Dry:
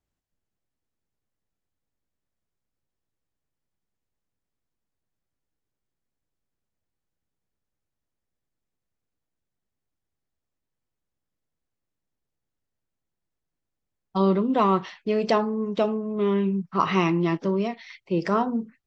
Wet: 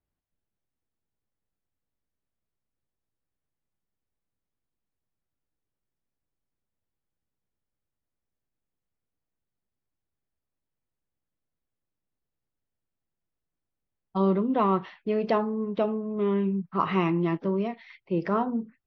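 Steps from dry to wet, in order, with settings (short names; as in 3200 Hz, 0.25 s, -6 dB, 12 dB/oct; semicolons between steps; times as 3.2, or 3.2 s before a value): air absorption 270 m; gain -2 dB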